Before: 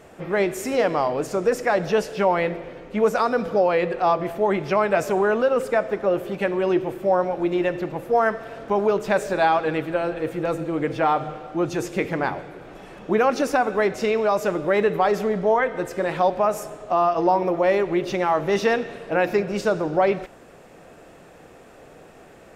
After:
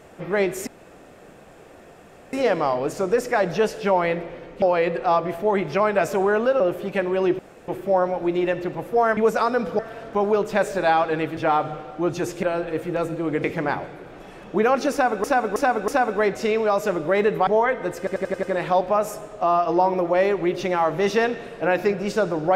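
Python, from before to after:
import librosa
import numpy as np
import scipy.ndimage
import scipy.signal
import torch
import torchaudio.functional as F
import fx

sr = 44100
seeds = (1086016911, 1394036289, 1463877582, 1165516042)

y = fx.edit(x, sr, fx.insert_room_tone(at_s=0.67, length_s=1.66),
    fx.move(start_s=2.96, length_s=0.62, to_s=8.34),
    fx.cut(start_s=5.56, length_s=0.5),
    fx.insert_room_tone(at_s=6.85, length_s=0.29),
    fx.move(start_s=9.92, length_s=1.01, to_s=11.99),
    fx.repeat(start_s=13.47, length_s=0.32, count=4),
    fx.cut(start_s=15.06, length_s=0.35),
    fx.stutter(start_s=15.92, slice_s=0.09, count=6), tone=tone)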